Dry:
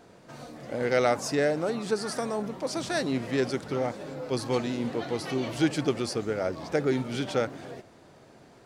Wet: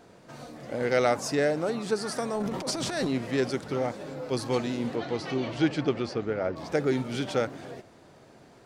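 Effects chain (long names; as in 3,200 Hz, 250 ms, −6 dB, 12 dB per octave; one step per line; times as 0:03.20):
0:02.35–0:03.09: transient designer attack −10 dB, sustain +10 dB
0:04.95–0:06.55: low-pass filter 6,600 Hz → 2,700 Hz 12 dB per octave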